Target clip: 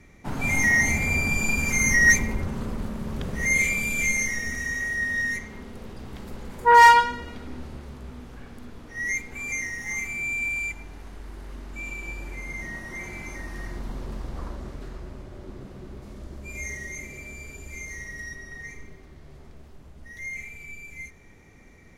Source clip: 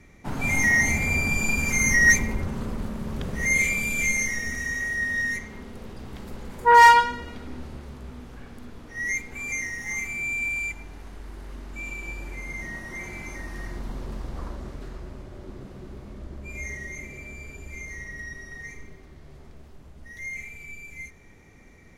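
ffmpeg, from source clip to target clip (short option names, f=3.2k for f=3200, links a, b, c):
-filter_complex "[0:a]asettb=1/sr,asplit=3[a][b][c];[a]atrim=end=16.024[d];[b]atrim=start=16.02:end=18.35,asetpts=PTS-STARTPTS,afade=t=in:d=0.004:c=qsin,afade=t=out:st=2.326:d=0.004:c=qsin,bass=f=250:g=-1,treble=f=4k:g=6[e];[c]atrim=start=18.346[f];[d][e]acrossfade=d=0.004:c1=hsin:c2=qsin[g];[g][f]acrossfade=d=0.004:c1=qsin:c2=hsin"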